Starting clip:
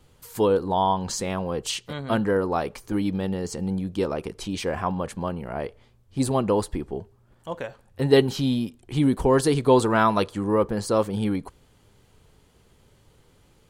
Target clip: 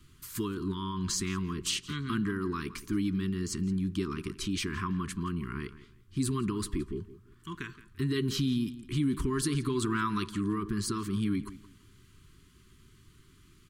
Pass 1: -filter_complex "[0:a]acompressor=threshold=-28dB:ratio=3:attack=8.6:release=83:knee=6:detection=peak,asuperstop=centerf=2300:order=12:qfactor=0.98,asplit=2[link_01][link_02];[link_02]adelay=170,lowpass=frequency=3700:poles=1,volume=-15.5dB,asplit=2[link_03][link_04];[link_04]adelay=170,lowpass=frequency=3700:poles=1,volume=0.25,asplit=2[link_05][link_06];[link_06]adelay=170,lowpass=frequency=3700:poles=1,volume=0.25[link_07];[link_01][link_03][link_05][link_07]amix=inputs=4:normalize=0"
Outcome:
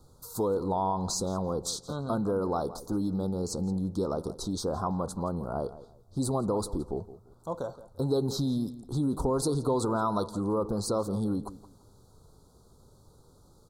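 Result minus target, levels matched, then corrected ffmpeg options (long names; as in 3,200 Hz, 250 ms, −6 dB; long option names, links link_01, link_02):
2,000 Hz band −14.0 dB
-filter_complex "[0:a]acompressor=threshold=-28dB:ratio=3:attack=8.6:release=83:knee=6:detection=peak,asuperstop=centerf=640:order=12:qfactor=0.98,asplit=2[link_01][link_02];[link_02]adelay=170,lowpass=frequency=3700:poles=1,volume=-15.5dB,asplit=2[link_03][link_04];[link_04]adelay=170,lowpass=frequency=3700:poles=1,volume=0.25,asplit=2[link_05][link_06];[link_06]adelay=170,lowpass=frequency=3700:poles=1,volume=0.25[link_07];[link_01][link_03][link_05][link_07]amix=inputs=4:normalize=0"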